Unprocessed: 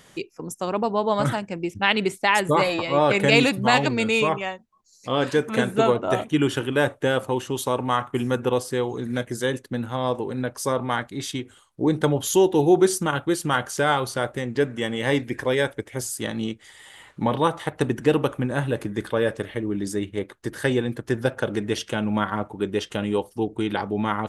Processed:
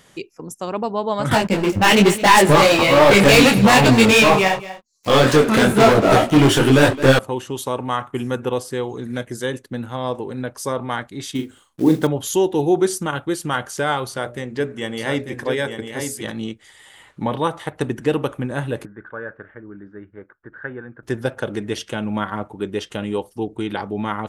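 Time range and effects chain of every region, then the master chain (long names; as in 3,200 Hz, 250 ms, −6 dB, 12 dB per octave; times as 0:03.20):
0:01.31–0:07.19: leveller curve on the samples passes 5 + single-tap delay 216 ms −16.5 dB + micro pitch shift up and down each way 37 cents
0:11.35–0:12.07: one scale factor per block 5 bits + parametric band 260 Hz +7.5 dB 0.94 octaves + double-tracking delay 38 ms −7 dB
0:14.08–0:16.32: mains-hum notches 60/120/180/240/300/360/420/480/540/600 Hz + single-tap delay 894 ms −6 dB
0:18.85–0:21.03: transistor ladder low-pass 1,600 Hz, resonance 75% + one half of a high-frequency compander decoder only
whole clip: no processing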